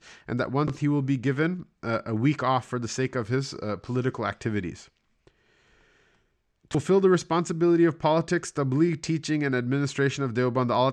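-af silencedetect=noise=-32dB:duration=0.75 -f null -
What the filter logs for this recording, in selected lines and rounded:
silence_start: 4.72
silence_end: 6.71 | silence_duration: 1.99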